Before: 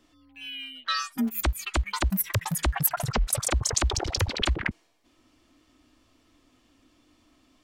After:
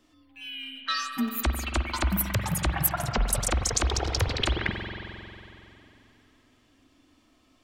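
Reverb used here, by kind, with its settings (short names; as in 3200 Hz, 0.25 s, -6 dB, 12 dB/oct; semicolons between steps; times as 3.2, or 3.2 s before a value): spring tank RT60 3 s, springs 45 ms, chirp 45 ms, DRR 4 dB; gain -1 dB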